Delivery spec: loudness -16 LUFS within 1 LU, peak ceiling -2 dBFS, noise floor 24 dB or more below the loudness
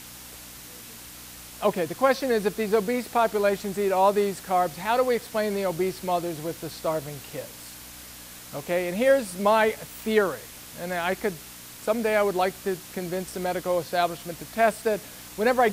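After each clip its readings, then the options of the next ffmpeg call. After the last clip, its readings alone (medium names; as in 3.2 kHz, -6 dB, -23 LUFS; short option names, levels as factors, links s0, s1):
hum 60 Hz; highest harmonic 300 Hz; hum level -52 dBFS; noise floor -43 dBFS; noise floor target -50 dBFS; loudness -25.5 LUFS; peak level -7.5 dBFS; loudness target -16.0 LUFS
-> -af "bandreject=f=60:t=h:w=4,bandreject=f=120:t=h:w=4,bandreject=f=180:t=h:w=4,bandreject=f=240:t=h:w=4,bandreject=f=300:t=h:w=4"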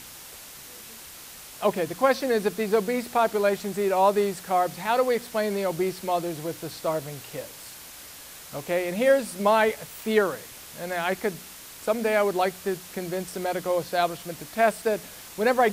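hum not found; noise floor -44 dBFS; noise floor target -50 dBFS
-> -af "afftdn=nr=6:nf=-44"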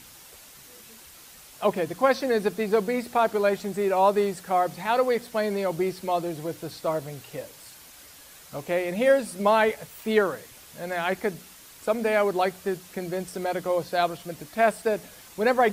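noise floor -49 dBFS; noise floor target -50 dBFS
-> -af "afftdn=nr=6:nf=-49"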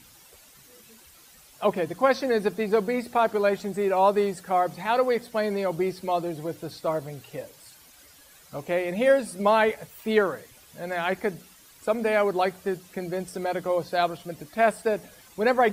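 noise floor -53 dBFS; loudness -25.5 LUFS; peak level -8.0 dBFS; loudness target -16.0 LUFS
-> -af "volume=2.99,alimiter=limit=0.794:level=0:latency=1"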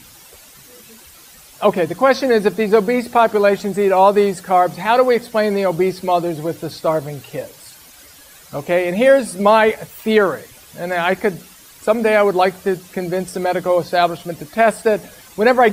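loudness -16.5 LUFS; peak level -2.0 dBFS; noise floor -44 dBFS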